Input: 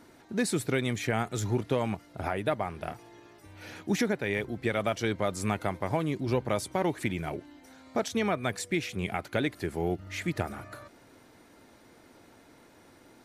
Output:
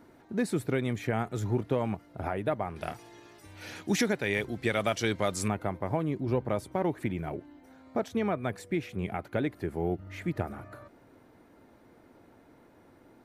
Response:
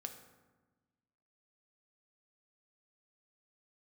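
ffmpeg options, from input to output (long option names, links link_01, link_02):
-af "asetnsamples=nb_out_samples=441:pad=0,asendcmd='2.76 equalizer g 4;5.48 equalizer g -13',equalizer=frequency=6400:width_type=o:width=2.9:gain=-10"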